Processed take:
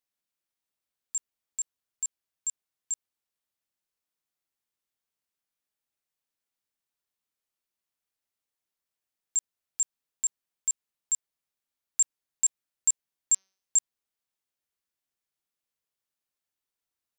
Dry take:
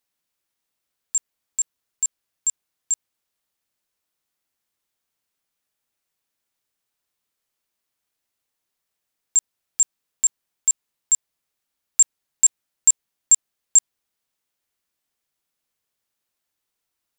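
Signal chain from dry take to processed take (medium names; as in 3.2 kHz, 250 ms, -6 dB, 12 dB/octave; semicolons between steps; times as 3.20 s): 13.32–13.77 s: de-hum 191.4 Hz, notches 33; trim -9 dB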